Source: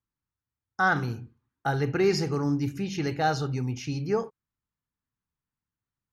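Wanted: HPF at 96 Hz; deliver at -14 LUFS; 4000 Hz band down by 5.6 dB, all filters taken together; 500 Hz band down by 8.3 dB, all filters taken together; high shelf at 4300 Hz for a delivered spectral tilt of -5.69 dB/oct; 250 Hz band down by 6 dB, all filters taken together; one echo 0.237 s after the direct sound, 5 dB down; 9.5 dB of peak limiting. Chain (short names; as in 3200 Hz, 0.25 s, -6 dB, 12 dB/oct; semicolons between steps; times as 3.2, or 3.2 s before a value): HPF 96 Hz; bell 250 Hz -5.5 dB; bell 500 Hz -9 dB; bell 4000 Hz -3 dB; high shelf 4300 Hz -6.5 dB; limiter -25.5 dBFS; echo 0.237 s -5 dB; gain +20.5 dB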